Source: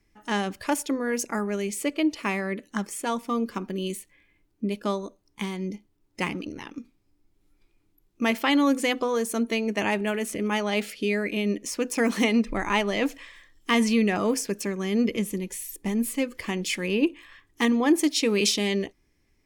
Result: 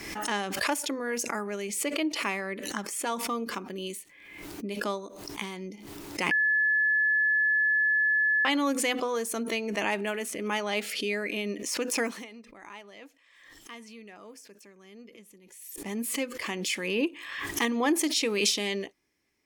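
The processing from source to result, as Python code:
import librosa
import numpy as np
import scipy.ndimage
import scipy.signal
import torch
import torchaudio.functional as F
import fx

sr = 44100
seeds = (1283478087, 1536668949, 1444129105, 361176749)

y = fx.edit(x, sr, fx.bleep(start_s=6.31, length_s=2.14, hz=1720.0, db=-19.0),
    fx.fade_down_up(start_s=11.99, length_s=3.99, db=-19.0, fade_s=0.26), tone=tone)
y = fx.highpass(y, sr, hz=420.0, slope=6)
y = fx.pre_swell(y, sr, db_per_s=45.0)
y = y * 10.0 ** (-2.0 / 20.0)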